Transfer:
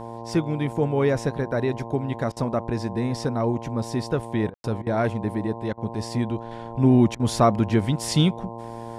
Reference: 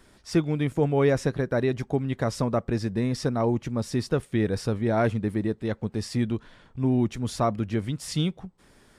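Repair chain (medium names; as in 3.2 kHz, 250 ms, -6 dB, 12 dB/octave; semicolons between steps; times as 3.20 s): de-hum 115.6 Hz, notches 9; room tone fill 4.54–4.64 s; interpolate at 2.32/4.50/4.82/5.73/7.15 s, 45 ms; gain correction -6.5 dB, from 6.51 s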